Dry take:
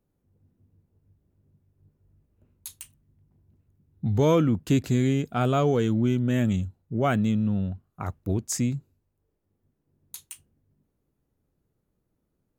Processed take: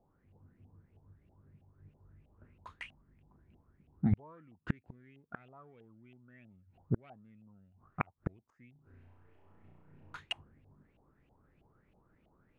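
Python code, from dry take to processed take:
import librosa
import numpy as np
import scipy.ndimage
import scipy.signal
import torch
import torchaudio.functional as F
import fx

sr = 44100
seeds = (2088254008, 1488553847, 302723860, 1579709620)

p1 = fx.self_delay(x, sr, depth_ms=0.1)
p2 = fx.peak_eq(p1, sr, hz=110.0, db=-14.5, octaves=0.49, at=(2.7, 4.11), fade=0.02)
p3 = fx.rider(p2, sr, range_db=3, speed_s=2.0)
p4 = p2 + (p3 * 10.0 ** (3.0 / 20.0))
p5 = fx.gate_flip(p4, sr, shuts_db=-14.0, range_db=-40)
p6 = fx.filter_lfo_lowpass(p5, sr, shape='saw_up', hz=3.1, low_hz=700.0, high_hz=2900.0, q=7.7)
p7 = fx.room_flutter(p6, sr, wall_m=5.7, rt60_s=1.3, at=(8.72, 10.17))
y = p7 * 10.0 ** (-4.0 / 20.0)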